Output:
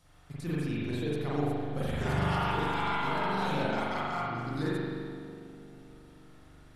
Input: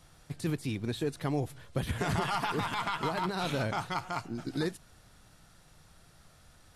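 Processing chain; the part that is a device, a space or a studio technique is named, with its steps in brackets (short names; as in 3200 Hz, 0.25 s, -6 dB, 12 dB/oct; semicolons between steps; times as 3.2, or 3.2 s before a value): dub delay into a spring reverb (darkening echo 0.313 s, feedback 68%, low-pass 960 Hz, level -12.5 dB; spring tank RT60 1.8 s, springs 41 ms, chirp 65 ms, DRR -8 dB); gain -7 dB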